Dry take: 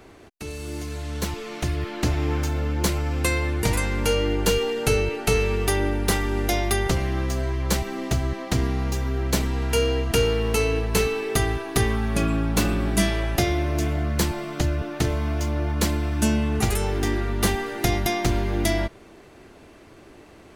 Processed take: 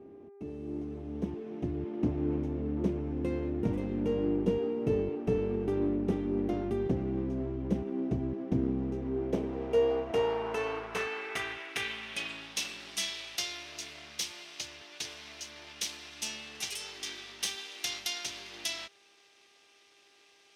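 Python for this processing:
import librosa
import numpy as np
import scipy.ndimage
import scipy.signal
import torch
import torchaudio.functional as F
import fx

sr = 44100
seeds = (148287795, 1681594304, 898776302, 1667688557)

y = fx.lower_of_two(x, sr, delay_ms=0.33)
y = fx.dmg_buzz(y, sr, base_hz=400.0, harmonics=6, level_db=-48.0, tilt_db=-9, odd_only=False)
y = fx.filter_sweep_bandpass(y, sr, from_hz=260.0, to_hz=4500.0, start_s=8.77, end_s=12.67, q=1.5)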